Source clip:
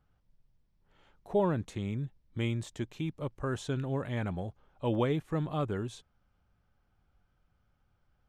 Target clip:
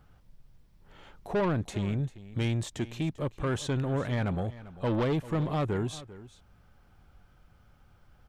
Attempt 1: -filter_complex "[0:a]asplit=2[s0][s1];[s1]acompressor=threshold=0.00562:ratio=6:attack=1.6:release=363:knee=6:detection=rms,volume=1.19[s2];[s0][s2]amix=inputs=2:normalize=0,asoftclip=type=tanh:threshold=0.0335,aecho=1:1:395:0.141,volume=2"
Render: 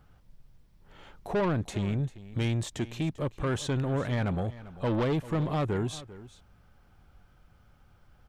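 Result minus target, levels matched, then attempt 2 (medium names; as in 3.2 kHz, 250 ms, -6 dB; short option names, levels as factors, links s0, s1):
compression: peak gain reduction -9.5 dB
-filter_complex "[0:a]asplit=2[s0][s1];[s1]acompressor=threshold=0.0015:ratio=6:attack=1.6:release=363:knee=6:detection=rms,volume=1.19[s2];[s0][s2]amix=inputs=2:normalize=0,asoftclip=type=tanh:threshold=0.0335,aecho=1:1:395:0.141,volume=2"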